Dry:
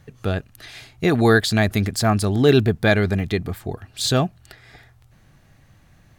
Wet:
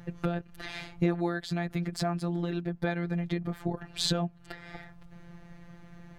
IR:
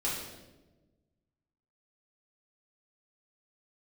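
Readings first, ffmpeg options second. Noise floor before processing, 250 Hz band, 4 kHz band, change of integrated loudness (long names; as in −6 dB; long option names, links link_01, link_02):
−54 dBFS, −10.0 dB, −9.5 dB, −12.5 dB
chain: -af "lowpass=frequency=1600:poles=1,acompressor=threshold=-30dB:ratio=20,afftfilt=real='hypot(re,im)*cos(PI*b)':imag='0':win_size=1024:overlap=0.75,volume=8.5dB"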